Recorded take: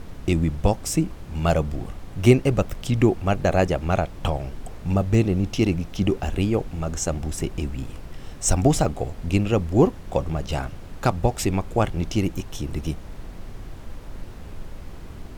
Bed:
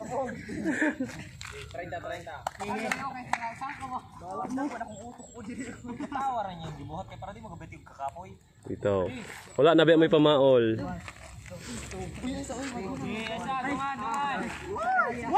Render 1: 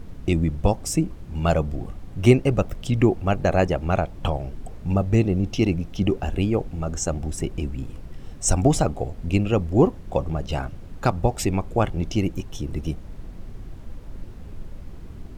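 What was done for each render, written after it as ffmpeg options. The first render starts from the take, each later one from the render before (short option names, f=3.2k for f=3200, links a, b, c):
-af "afftdn=nr=7:nf=-39"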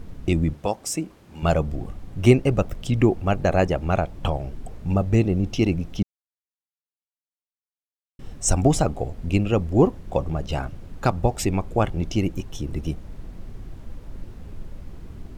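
-filter_complex "[0:a]asettb=1/sr,asplit=3[a][b][c];[a]atrim=end=0.534[d];[b]atrim=start=0.53:end=1.43,asetpts=PTS-STARTPTS,afade=t=in:d=0.004:c=qsin,afade=t=out:st=0.896:d=0.004:c=qsin,highpass=f=460:p=1[e];[c]atrim=start=1.426[f];[d][e]acrossfade=d=0.004:c1=hsin:c2=qsin[g];[g][f]acrossfade=d=0.004:c1=qsin:c2=hsin,asplit=3[h][i][j];[h]atrim=end=6.03,asetpts=PTS-STARTPTS,afade=t=out:st=6.026:d=0.004:c=hsin[k];[i]atrim=start=6.03:end=8.19,asetpts=PTS-STARTPTS,volume=0[l];[j]atrim=start=8.19,asetpts=PTS-STARTPTS,afade=t=in:d=0.004:c=hsin[m];[k][l][m]concat=n=3:v=0:a=1"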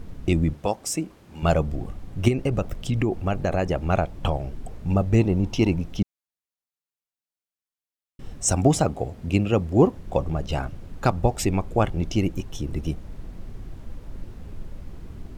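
-filter_complex "[0:a]asettb=1/sr,asplit=3[a][b][c];[a]atrim=end=2.284[d];[b]atrim=start=2.28:end=3.9,asetpts=PTS-STARTPTS,afade=t=in:d=0.004:c=qsin,afade=t=out:st=1.616:d=0.004:c=qsin,acompressor=threshold=-18dB:ratio=6:attack=3.2:release=140:knee=1:detection=peak[e];[c]atrim=start=3.896[f];[d][e]acrossfade=d=0.004:c1=hsin:c2=qsin[g];[g][f]acrossfade=d=0.004:c1=qsin:c2=hsin,asettb=1/sr,asplit=3[h][i][j];[h]atrim=end=5.194[k];[i]atrim=start=5.19:end=5.82,asetpts=PTS-STARTPTS,afade=t=in:d=0.004:c=qsin,afade=t=out:st=0.626:d=0.004:c=qsin,equalizer=f=930:t=o:w=0.22:g=13[l];[j]atrim=start=5.816[m];[k][l]acrossfade=d=0.004:c1=hsin:c2=qsin[n];[n][m]acrossfade=d=0.004:c1=qsin:c2=hsin,asettb=1/sr,asplit=3[o][p][q];[o]atrim=end=8.434[r];[p]atrim=start=8.43:end=9.96,asetpts=PTS-STARTPTS,afade=t=in:d=0.004:c=qsin,afade=t=out:st=1.526:d=0.004:c=qsin,highpass=71[s];[q]atrim=start=9.956[t];[r][s]acrossfade=d=0.004:c1=hsin:c2=qsin[u];[u][t]acrossfade=d=0.004:c1=qsin:c2=hsin"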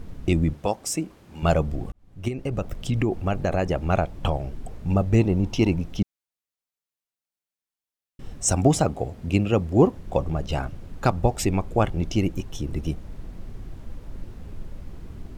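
-filter_complex "[0:a]asplit=2[a][b];[a]atrim=end=1.92,asetpts=PTS-STARTPTS,afade=t=out:st=1.916:d=0.004:c=hsin[c];[b]atrim=start=1.92,asetpts=PTS-STARTPTS,afade=t=in:d=0.91[d];[c][d]concat=n=2:v=0:a=1"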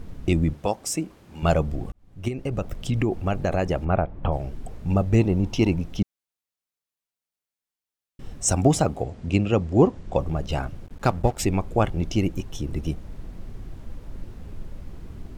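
-filter_complex "[0:a]asplit=3[a][b][c];[a]afade=t=out:st=3.84:d=0.02[d];[b]lowpass=1.7k,afade=t=in:st=3.84:d=0.02,afade=t=out:st=4.31:d=0.02[e];[c]afade=t=in:st=4.31:d=0.02[f];[d][e][f]amix=inputs=3:normalize=0,asettb=1/sr,asplit=3[g][h][i];[g]atrim=end=9.034[j];[h]atrim=start=9.03:end=10.19,asetpts=PTS-STARTPTS,afade=t=in:d=0.004:c=qsin,afade=t=out:st=1.156:d=0.004:c=qsin,lowpass=f=8.4k:w=0.5412,lowpass=f=8.4k:w=1.3066[k];[i]atrim=start=10.186[l];[j][k]acrossfade=d=0.004:c1=hsin:c2=qsin[m];[m][l]acrossfade=d=0.004:c1=qsin:c2=hsin,asettb=1/sr,asplit=3[n][o][p];[n]atrim=end=10.864[q];[o]atrim=start=10.86:end=11.4,asetpts=PTS-STARTPTS,afade=t=in:d=0.004:c=qsin,afade=t=out:st=0.536:d=0.004:c=qsin,aeval=exprs='sgn(val(0))*max(abs(val(0))-0.00944,0)':c=same[r];[p]atrim=start=11.396[s];[q][r]acrossfade=d=0.004:c1=hsin:c2=qsin[t];[t][s]acrossfade=d=0.004:c1=qsin:c2=hsin"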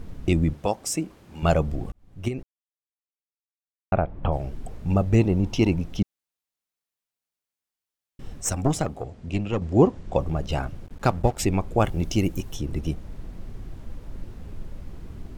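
-filter_complex "[0:a]asettb=1/sr,asplit=3[a][b][c];[a]atrim=end=8.414[d];[b]atrim=start=8.41:end=9.62,asetpts=PTS-STARTPTS,afade=t=in:d=0.004:c=qsin,afade=t=out:st=1.206:d=0.004:c=qsin,aeval=exprs='(tanh(2.82*val(0)+0.75)-tanh(0.75))/2.82':c=same[e];[c]atrim=start=9.616[f];[d][e]acrossfade=d=0.004:c1=hsin:c2=qsin[g];[g][f]acrossfade=d=0.004:c1=qsin:c2=hsin,asettb=1/sr,asplit=3[h][i][j];[h]atrim=end=11.804[k];[i]atrim=start=11.8:end=12.55,asetpts=PTS-STARTPTS,afade=t=in:d=0.004:c=qsin,afade=t=out:st=0.746:d=0.004:c=qsin,highshelf=f=8.4k:g=12[l];[j]atrim=start=12.546[m];[k][l]acrossfade=d=0.004:c1=hsin:c2=qsin[n];[n][m]acrossfade=d=0.004:c1=qsin:c2=hsin,asplit=3[o][p][q];[o]atrim=end=2.43,asetpts=PTS-STARTPTS,afade=t=out:st=2.426:d=0.004:c=hsin[r];[p]atrim=start=2.43:end=3.92,asetpts=PTS-STARTPTS,volume=0[s];[q]atrim=start=3.92,asetpts=PTS-STARTPTS,afade=t=in:d=0.004:c=hsin[t];[r][s][t]concat=n=3:v=0:a=1"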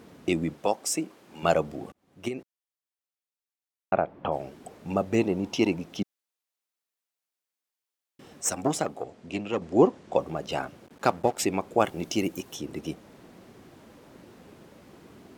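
-af "highpass=270"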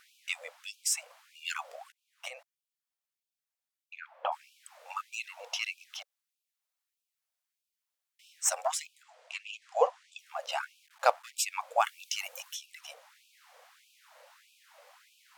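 -af "afftfilt=real='re*gte(b*sr/1024,460*pow(2400/460,0.5+0.5*sin(2*PI*1.6*pts/sr)))':imag='im*gte(b*sr/1024,460*pow(2400/460,0.5+0.5*sin(2*PI*1.6*pts/sr)))':win_size=1024:overlap=0.75"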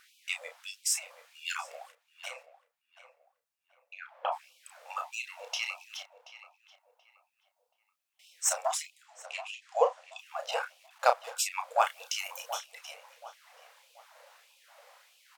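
-filter_complex "[0:a]asplit=2[a][b];[b]adelay=32,volume=-7.5dB[c];[a][c]amix=inputs=2:normalize=0,asplit=2[d][e];[e]adelay=730,lowpass=f=1.8k:p=1,volume=-12dB,asplit=2[f][g];[g]adelay=730,lowpass=f=1.8k:p=1,volume=0.36,asplit=2[h][i];[i]adelay=730,lowpass=f=1.8k:p=1,volume=0.36,asplit=2[j][k];[k]adelay=730,lowpass=f=1.8k:p=1,volume=0.36[l];[d][f][h][j][l]amix=inputs=5:normalize=0"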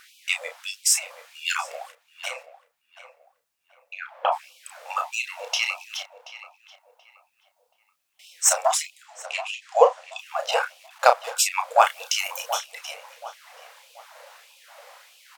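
-af "volume=9.5dB,alimiter=limit=-1dB:level=0:latency=1"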